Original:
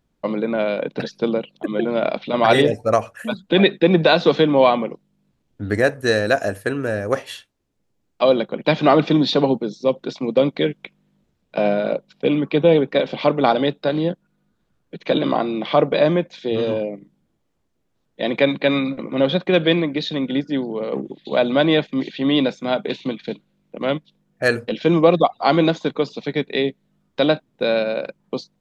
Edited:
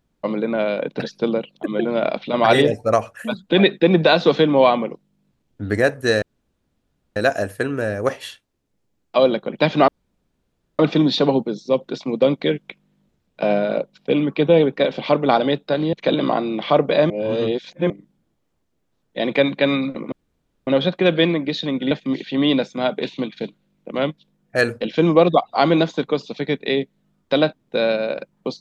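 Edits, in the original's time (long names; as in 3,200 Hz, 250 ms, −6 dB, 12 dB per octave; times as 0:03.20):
0:06.22: splice in room tone 0.94 s
0:08.94: splice in room tone 0.91 s
0:14.08–0:14.96: remove
0:16.13–0:16.93: reverse
0:19.15: splice in room tone 0.55 s
0:20.39–0:21.78: remove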